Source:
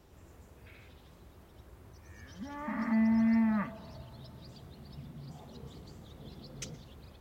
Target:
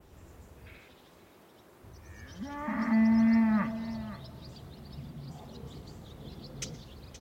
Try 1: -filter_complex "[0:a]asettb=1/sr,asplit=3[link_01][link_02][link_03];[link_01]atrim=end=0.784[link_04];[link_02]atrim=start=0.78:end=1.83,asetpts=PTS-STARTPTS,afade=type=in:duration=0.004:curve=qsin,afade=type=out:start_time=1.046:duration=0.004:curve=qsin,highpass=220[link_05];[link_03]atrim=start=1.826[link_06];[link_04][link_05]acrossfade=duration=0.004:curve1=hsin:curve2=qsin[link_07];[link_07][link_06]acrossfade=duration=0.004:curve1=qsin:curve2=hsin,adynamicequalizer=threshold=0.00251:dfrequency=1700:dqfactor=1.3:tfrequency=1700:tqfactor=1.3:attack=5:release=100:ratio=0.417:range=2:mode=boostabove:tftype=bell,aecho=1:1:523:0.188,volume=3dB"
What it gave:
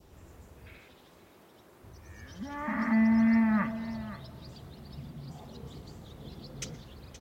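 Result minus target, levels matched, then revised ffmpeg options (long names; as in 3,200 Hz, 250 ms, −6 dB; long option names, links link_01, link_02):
2,000 Hz band +3.0 dB
-filter_complex "[0:a]asettb=1/sr,asplit=3[link_01][link_02][link_03];[link_01]atrim=end=0.784[link_04];[link_02]atrim=start=0.78:end=1.83,asetpts=PTS-STARTPTS,afade=type=in:duration=0.004:curve=qsin,afade=type=out:start_time=1.046:duration=0.004:curve=qsin,highpass=220[link_05];[link_03]atrim=start=1.826[link_06];[link_04][link_05]acrossfade=duration=0.004:curve1=hsin:curve2=qsin[link_07];[link_07][link_06]acrossfade=duration=0.004:curve1=qsin:curve2=hsin,adynamicequalizer=threshold=0.00251:dfrequency=5000:dqfactor=1.3:tfrequency=5000:tqfactor=1.3:attack=5:release=100:ratio=0.417:range=2:mode=boostabove:tftype=bell,aecho=1:1:523:0.188,volume=3dB"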